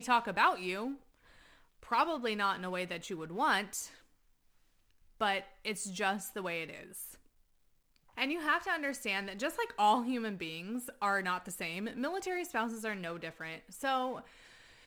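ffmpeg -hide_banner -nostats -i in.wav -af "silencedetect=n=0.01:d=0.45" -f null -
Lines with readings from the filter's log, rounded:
silence_start: 0.94
silence_end: 1.92 | silence_duration: 0.98
silence_start: 3.86
silence_end: 5.21 | silence_duration: 1.35
silence_start: 7.05
silence_end: 8.18 | silence_duration: 1.13
silence_start: 14.19
silence_end: 14.86 | silence_duration: 0.68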